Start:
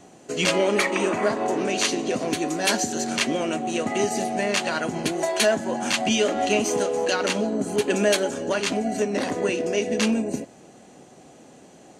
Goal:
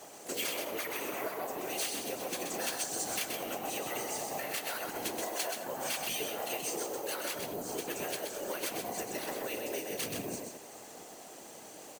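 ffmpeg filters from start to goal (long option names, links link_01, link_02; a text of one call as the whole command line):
ffmpeg -i in.wav -filter_complex "[0:a]lowpass=9400,acrusher=samples=3:mix=1:aa=0.000001,highpass=410,acompressor=threshold=-35dB:ratio=20,afftfilt=real='hypot(re,im)*cos(2*PI*random(0))':imag='hypot(re,im)*sin(2*PI*random(1))':win_size=512:overlap=0.75,aemphasis=mode=production:type=cd,asplit=4[link_01][link_02][link_03][link_04];[link_02]asetrate=33038,aresample=44100,atempo=1.33484,volume=-10dB[link_05];[link_03]asetrate=58866,aresample=44100,atempo=0.749154,volume=-14dB[link_06];[link_04]asetrate=66075,aresample=44100,atempo=0.66742,volume=-14dB[link_07];[link_01][link_05][link_06][link_07]amix=inputs=4:normalize=0,asplit=2[link_08][link_09];[link_09]aecho=0:1:128|210:0.562|0.126[link_10];[link_08][link_10]amix=inputs=2:normalize=0,volume=5dB" out.wav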